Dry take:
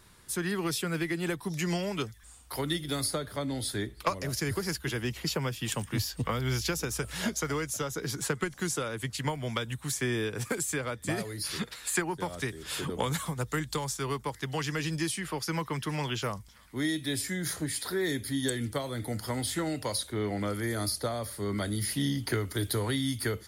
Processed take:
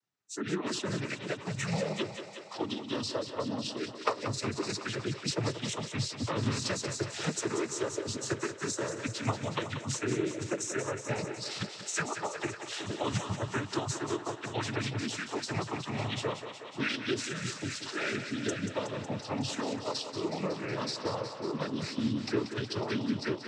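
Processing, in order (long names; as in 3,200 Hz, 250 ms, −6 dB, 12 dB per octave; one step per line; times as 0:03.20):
phase-vocoder pitch shift with formants kept −2.5 semitones
noise reduction from a noise print of the clip's start 29 dB
cochlear-implant simulation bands 12
on a send: feedback echo with a high-pass in the loop 184 ms, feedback 75%, high-pass 250 Hz, level −9 dB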